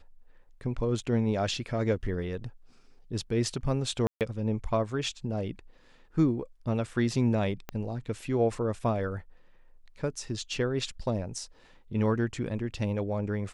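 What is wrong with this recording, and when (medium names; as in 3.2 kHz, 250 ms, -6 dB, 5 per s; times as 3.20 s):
4.07–4.21 s: dropout 138 ms
7.69 s: pop -20 dBFS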